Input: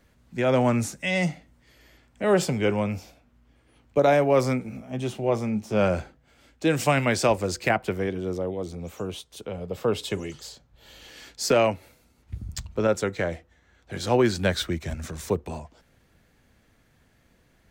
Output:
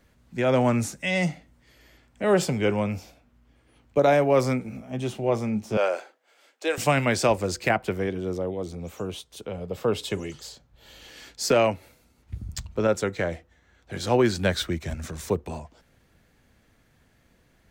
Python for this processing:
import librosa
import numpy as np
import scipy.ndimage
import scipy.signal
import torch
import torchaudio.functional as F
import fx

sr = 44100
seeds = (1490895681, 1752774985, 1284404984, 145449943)

y = fx.highpass(x, sr, hz=420.0, slope=24, at=(5.77, 6.78))